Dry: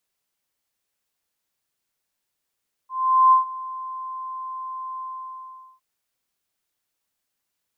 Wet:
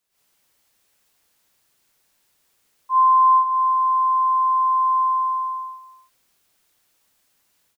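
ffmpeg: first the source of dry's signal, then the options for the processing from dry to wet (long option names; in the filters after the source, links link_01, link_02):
-f lavfi -i "aevalsrc='0.316*sin(2*PI*1040*t)':duration=2.909:sample_rate=44100,afade=type=in:duration=0.428,afade=type=out:start_time=0.428:duration=0.126:silence=0.106,afade=type=out:start_time=2.11:duration=0.799"
-af "dynaudnorm=framelen=100:gausssize=3:maxgain=13.5dB,alimiter=limit=-11dB:level=0:latency=1:release=197,aecho=1:1:305:0.178"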